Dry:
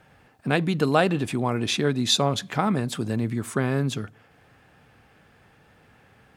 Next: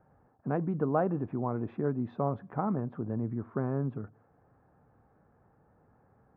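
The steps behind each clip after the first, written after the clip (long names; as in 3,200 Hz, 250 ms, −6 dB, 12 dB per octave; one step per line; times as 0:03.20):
low-pass filter 1,200 Hz 24 dB per octave
level −7 dB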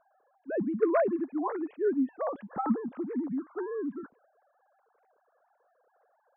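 three sine waves on the formant tracks
level that may rise only so fast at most 510 dB per second
level +1.5 dB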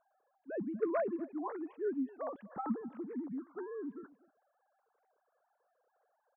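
single-tap delay 245 ms −21.5 dB
level −8 dB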